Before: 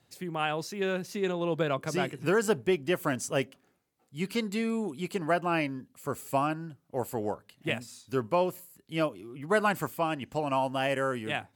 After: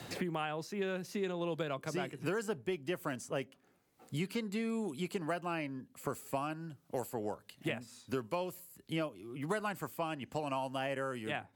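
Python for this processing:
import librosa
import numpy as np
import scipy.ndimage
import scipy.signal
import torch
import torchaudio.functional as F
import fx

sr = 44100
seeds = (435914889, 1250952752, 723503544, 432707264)

y = fx.band_squash(x, sr, depth_pct=100)
y = F.gain(torch.from_numpy(y), -8.5).numpy()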